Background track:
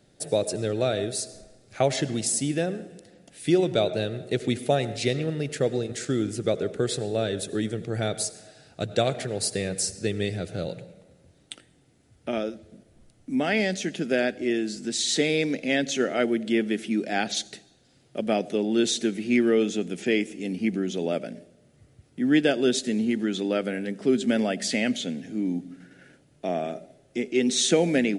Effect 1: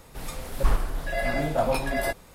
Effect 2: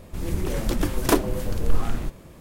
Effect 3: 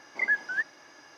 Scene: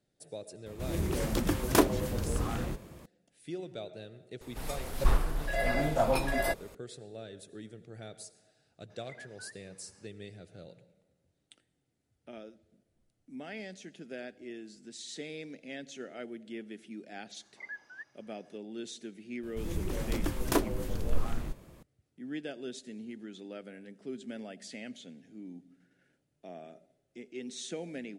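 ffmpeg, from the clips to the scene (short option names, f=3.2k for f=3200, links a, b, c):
-filter_complex "[2:a]asplit=2[a][b];[3:a]asplit=2[c][d];[0:a]volume=-18.5dB[e];[a]highpass=49[f];[c]alimiter=level_in=3.5dB:limit=-24dB:level=0:latency=1:release=178,volume=-3.5dB[g];[f]atrim=end=2.4,asetpts=PTS-STARTPTS,volume=-3.5dB,afade=t=in:d=0.004:c=hsin,afade=t=out:st=2.396:d=0.004:c=hsin,adelay=660[h];[1:a]atrim=end=2.34,asetpts=PTS-STARTPTS,volume=-3dB,afade=t=in:d=0.004:c=hsin,afade=t=out:st=2.336:d=0.004:c=hsin,adelay=194481S[i];[g]atrim=end=1.17,asetpts=PTS-STARTPTS,volume=-16dB,afade=t=in:d=0.004:c=hsin,afade=t=out:st=1.166:d=0.004:c=hsin,adelay=392490S[j];[d]atrim=end=1.17,asetpts=PTS-STARTPTS,volume=-17.5dB,afade=t=in:d=0.004:c=hsin,afade=t=out:st=1.166:d=0.004:c=hsin,adelay=17410[k];[b]atrim=end=2.4,asetpts=PTS-STARTPTS,volume=-8dB,afade=t=in:d=0.004:c=hsin,afade=t=out:st=2.396:d=0.004:c=hsin,adelay=19430[l];[e][h][i][j][k][l]amix=inputs=6:normalize=0"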